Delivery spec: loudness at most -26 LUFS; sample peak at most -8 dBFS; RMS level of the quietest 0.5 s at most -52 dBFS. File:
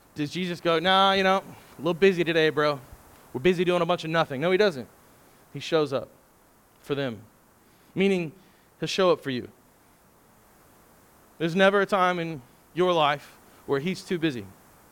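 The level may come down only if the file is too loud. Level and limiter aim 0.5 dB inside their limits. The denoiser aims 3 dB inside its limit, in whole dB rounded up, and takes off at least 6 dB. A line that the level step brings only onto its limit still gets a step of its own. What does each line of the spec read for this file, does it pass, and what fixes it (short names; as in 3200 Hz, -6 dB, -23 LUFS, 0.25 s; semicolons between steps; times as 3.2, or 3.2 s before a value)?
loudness -24.5 LUFS: fail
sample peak -7.0 dBFS: fail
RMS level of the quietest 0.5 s -59 dBFS: OK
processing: gain -2 dB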